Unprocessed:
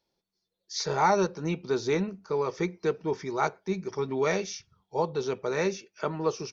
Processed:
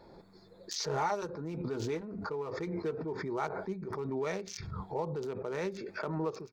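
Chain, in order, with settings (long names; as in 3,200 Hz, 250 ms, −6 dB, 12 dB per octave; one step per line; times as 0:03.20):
adaptive Wiener filter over 15 samples
0:00.83–0:03.12: notch comb filter 190 Hz
background raised ahead of every attack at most 27 dB per second
level −8.5 dB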